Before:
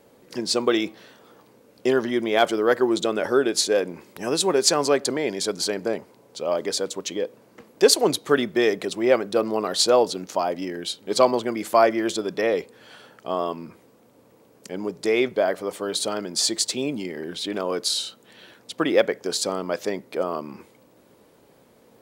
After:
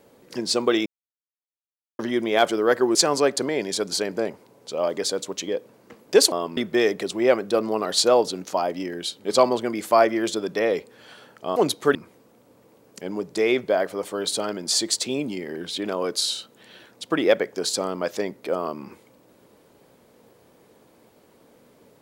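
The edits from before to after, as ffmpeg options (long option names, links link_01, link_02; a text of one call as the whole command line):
ffmpeg -i in.wav -filter_complex "[0:a]asplit=8[link_01][link_02][link_03][link_04][link_05][link_06][link_07][link_08];[link_01]atrim=end=0.86,asetpts=PTS-STARTPTS,afade=type=out:start_time=0.856:duration=0.004:curve=hsin[link_09];[link_02]atrim=start=0.86:end=1.99,asetpts=PTS-STARTPTS,volume=0[link_10];[link_03]atrim=start=1.99:end=2.952,asetpts=PTS-STARTPTS,afade=type=in:duration=0.004:curve=hsin[link_11];[link_04]atrim=start=4.628:end=8.002[link_12];[link_05]atrim=start=13.378:end=13.632[link_13];[link_06]atrim=start=8.388:end=13.382[link_14];[link_07]atrim=start=7.998:end=8.392[link_15];[link_08]atrim=start=13.628[link_16];[link_09][link_10][link_11]concat=n=3:v=0:a=1[link_17];[link_17][link_12]acrossfade=duration=0.004:curve1=hsin:curve2=hsin[link_18];[link_18][link_13]acrossfade=duration=0.004:curve1=hsin:curve2=hsin[link_19];[link_19][link_14]acrossfade=duration=0.004:curve1=hsin:curve2=hsin[link_20];[link_20][link_15]acrossfade=duration=0.004:curve1=hsin:curve2=hsin[link_21];[link_21][link_16]acrossfade=duration=0.004:curve1=hsin:curve2=hsin" out.wav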